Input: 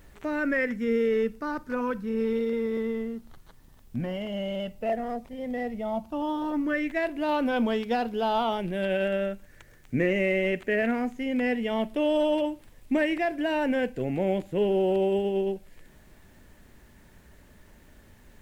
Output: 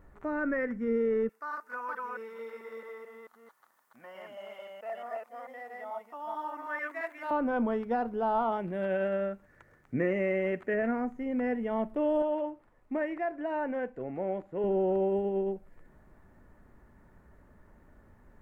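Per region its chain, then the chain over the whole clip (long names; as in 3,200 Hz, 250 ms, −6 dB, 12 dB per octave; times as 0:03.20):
0:01.29–0:07.31: delay that plays each chunk backwards 220 ms, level −0.5 dB + high-pass filter 1,000 Hz + high-shelf EQ 4,500 Hz +9.5 dB
0:08.52–0:10.74: high-pass filter 97 Hz 6 dB per octave + parametric band 3,500 Hz +4 dB 2.4 octaves
0:12.22–0:14.64: low-pass filter 3,700 Hz 6 dB per octave + low-shelf EQ 270 Hz −11.5 dB
whole clip: high shelf with overshoot 2,100 Hz −14 dB, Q 1.5; notch filter 1,600 Hz, Q 16; level −4 dB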